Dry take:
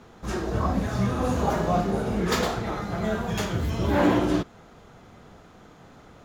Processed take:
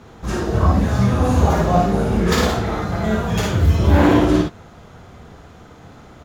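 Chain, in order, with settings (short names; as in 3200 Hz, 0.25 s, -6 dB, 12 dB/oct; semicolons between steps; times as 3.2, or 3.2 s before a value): bell 82 Hz +7 dB 1.1 oct; on a send: early reflections 56 ms -3.5 dB, 69 ms -10 dB; on the sum: gain +4.5 dB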